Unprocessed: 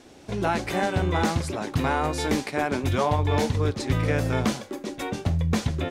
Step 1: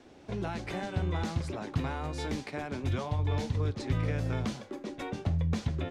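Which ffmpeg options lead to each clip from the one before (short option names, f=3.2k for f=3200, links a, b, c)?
-filter_complex "[0:a]aemphasis=mode=reproduction:type=50fm,acrossover=split=180|3000[a][b][c];[b]acompressor=threshold=-30dB:ratio=6[d];[a][d][c]amix=inputs=3:normalize=0,volume=-5dB"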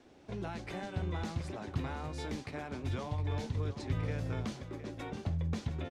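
-af "aecho=1:1:713:0.251,volume=-5dB"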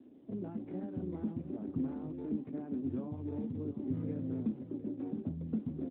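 -af "bandpass=f=260:t=q:w=3.1:csg=0,volume=9.5dB" -ar 8000 -c:a libopencore_amrnb -b:a 12200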